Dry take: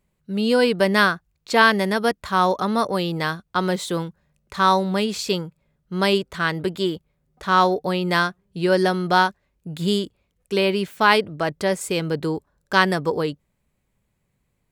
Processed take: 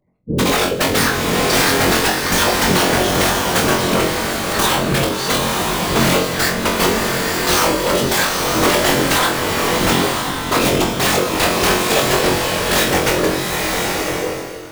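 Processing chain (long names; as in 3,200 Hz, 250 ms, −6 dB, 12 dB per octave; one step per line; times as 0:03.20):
pitch shifter swept by a sawtooth +1.5 semitones, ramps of 224 ms
gate on every frequency bin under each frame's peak −20 dB strong
high-pass filter 280 Hz 6 dB per octave
high-shelf EQ 5,600 Hz −11.5 dB
mains-hum notches 60/120/180/240/300/360/420/480/540 Hz
transient designer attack +5 dB, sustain −3 dB
downward compressor 3 to 1, threshold −24 dBFS, peak gain reduction 10 dB
wrap-around overflow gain 21 dB
random phases in short frames
on a send: flutter between parallel walls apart 3.8 metres, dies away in 0.33 s
on the sum: boost into a limiter +15 dB
slow-attack reverb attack 990 ms, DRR −0.5 dB
level −5 dB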